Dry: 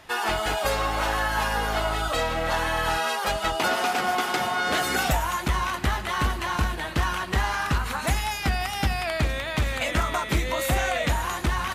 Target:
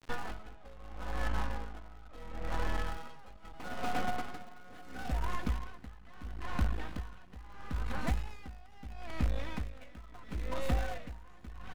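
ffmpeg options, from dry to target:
ffmpeg -i in.wav -filter_complex "[0:a]acrusher=bits=5:mode=log:mix=0:aa=0.000001,aecho=1:1:4:0.56,aecho=1:1:378|756:0.0631|0.0215,acrusher=bits=4:dc=4:mix=0:aa=0.000001,aemphasis=mode=reproduction:type=75kf,asettb=1/sr,asplit=3[link_01][link_02][link_03];[link_01]atrim=end=0.434[link_04];[link_02]atrim=start=0.43:end=2.86,asetpts=PTS-STARTPTS,afade=type=in:duration=0.004:curve=qsin,afade=type=out:start_time=2.426:duration=0.004:curve=qsin,adynamicsmooth=sensitivity=6.5:basefreq=1400[link_05];[link_03]atrim=start=2.856[link_06];[link_04][link_05]acrossfade=duration=0.004:curve1=hsin:curve2=qsin[link_07];[link_07][link_06]acrossfade=duration=0.004:curve1=qsin:curve2=hsin,asoftclip=type=tanh:threshold=-21dB,lowshelf=frequency=240:gain=11,acompressor=threshold=-30dB:ratio=2.5,aeval=exprs='val(0)*pow(10,-20*(0.5-0.5*cos(2*PI*0.75*n/s))/20)':channel_layout=same" out.wav

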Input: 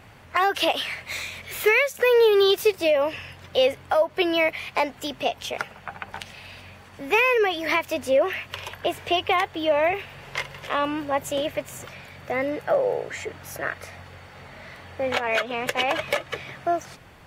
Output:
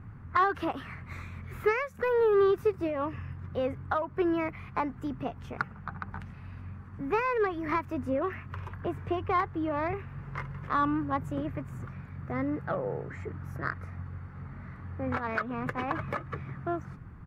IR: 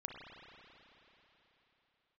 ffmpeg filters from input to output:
-filter_complex "[0:a]firequalizer=gain_entry='entry(150,0);entry(590,-20);entry(1200,-2);entry(3100,-25)':delay=0.05:min_phase=1,asplit=2[link_01][link_02];[link_02]adynamicsmooth=sensitivity=1:basefreq=900,volume=2dB[link_03];[link_01][link_03]amix=inputs=2:normalize=0"

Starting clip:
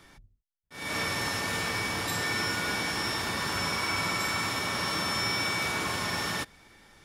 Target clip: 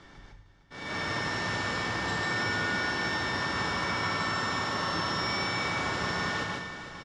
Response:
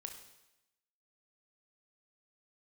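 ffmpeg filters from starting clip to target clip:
-filter_complex "[0:a]lowpass=frequency=7100:width=0.5412,lowpass=frequency=7100:width=1.3066,highshelf=frequency=4700:gain=-8.5,bandreject=frequency=2400:width=9,asplit=2[link_01][link_02];[link_02]acompressor=threshold=-47dB:ratio=6,volume=3dB[link_03];[link_01][link_03]amix=inputs=2:normalize=0,aecho=1:1:457|914|1371|1828|2285|2742:0.237|0.133|0.0744|0.0416|0.0233|0.0131,asplit=2[link_04][link_05];[1:a]atrim=start_sample=2205,adelay=150[link_06];[link_05][link_06]afir=irnorm=-1:irlink=0,volume=3.5dB[link_07];[link_04][link_07]amix=inputs=2:normalize=0,volume=-3.5dB"

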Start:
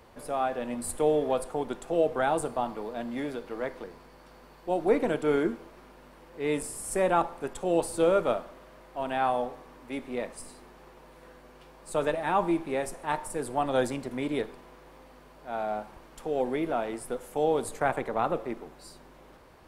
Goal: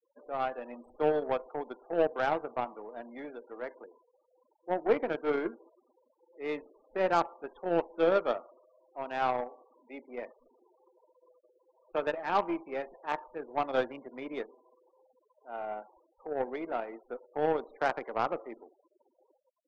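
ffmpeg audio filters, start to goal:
ffmpeg -i in.wav -filter_complex "[0:a]acrossover=split=270 4000:gain=0.158 1 0.0631[link_01][link_02][link_03];[link_01][link_02][link_03]amix=inputs=3:normalize=0,afftfilt=real='re*gte(hypot(re,im),0.00891)':imag='im*gte(hypot(re,im),0.00891)':win_size=1024:overlap=0.75,aeval=exprs='0.251*(cos(1*acos(clip(val(0)/0.251,-1,1)))-cos(1*PI/2))+0.01*(cos(4*acos(clip(val(0)/0.251,-1,1)))-cos(4*PI/2))+0.00158*(cos(6*acos(clip(val(0)/0.251,-1,1)))-cos(6*PI/2))+0.0178*(cos(7*acos(clip(val(0)/0.251,-1,1)))-cos(7*PI/2))':channel_layout=same,volume=-1.5dB" out.wav

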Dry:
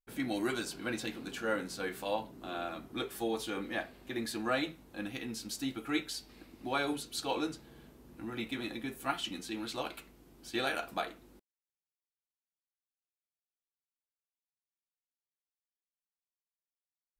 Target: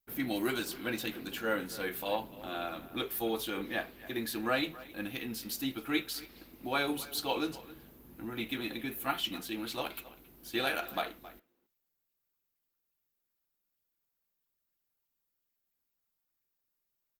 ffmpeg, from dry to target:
ffmpeg -i in.wav -filter_complex "[0:a]adynamicequalizer=threshold=0.00316:dfrequency=3100:dqfactor=1.1:tfrequency=3100:tqfactor=1.1:attack=5:release=100:ratio=0.375:range=2:mode=boostabove:tftype=bell,asplit=2[link_01][link_02];[link_02]adelay=270,highpass=300,lowpass=3400,asoftclip=type=hard:threshold=-25.5dB,volume=-16dB[link_03];[link_01][link_03]amix=inputs=2:normalize=0,aexciter=amount=5.2:drive=5.2:freq=12000,volume=1dB" -ar 48000 -c:a libopus -b:a 24k out.opus

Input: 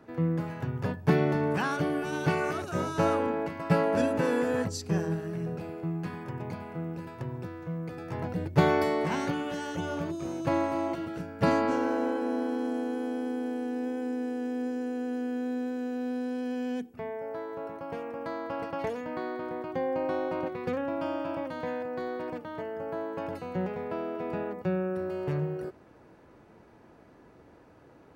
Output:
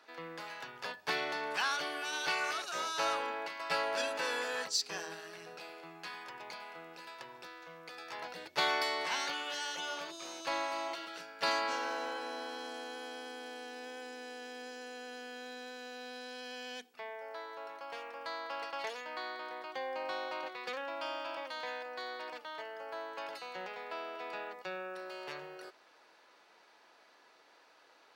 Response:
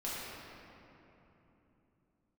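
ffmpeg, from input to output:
-filter_complex "[0:a]highpass=820,equalizer=frequency=4200:width_type=o:width=1.4:gain=12.5,asplit=2[link_01][link_02];[link_02]asoftclip=type=hard:threshold=-32.5dB,volume=-10dB[link_03];[link_01][link_03]amix=inputs=2:normalize=0,volume=-4.5dB"

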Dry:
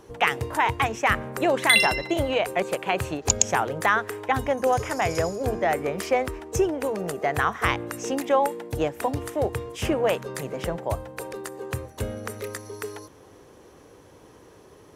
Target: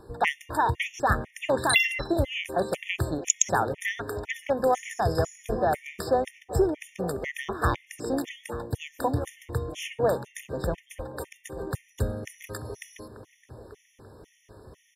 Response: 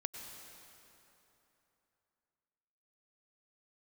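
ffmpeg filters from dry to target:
-filter_complex "[0:a]lowshelf=frequency=110:gain=8,asplit=2[link_01][link_02];[link_02]adelay=887,lowpass=frequency=1200:poles=1,volume=-13dB,asplit=2[link_03][link_04];[link_04]adelay=887,lowpass=frequency=1200:poles=1,volume=0.53,asplit=2[link_05][link_06];[link_06]adelay=887,lowpass=frequency=1200:poles=1,volume=0.53,asplit=2[link_07][link_08];[link_08]adelay=887,lowpass=frequency=1200:poles=1,volume=0.53,asplit=2[link_09][link_10];[link_10]adelay=887,lowpass=frequency=1200:poles=1,volume=0.53[link_11];[link_01][link_03][link_05][link_07][link_09][link_11]amix=inputs=6:normalize=0,afftfilt=real='re*gt(sin(2*PI*2*pts/sr)*(1-2*mod(floor(b*sr/1024/1800),2)),0)':imag='im*gt(sin(2*PI*2*pts/sr)*(1-2*mod(floor(b*sr/1024/1800),2)),0)':win_size=1024:overlap=0.75,volume=-1dB"

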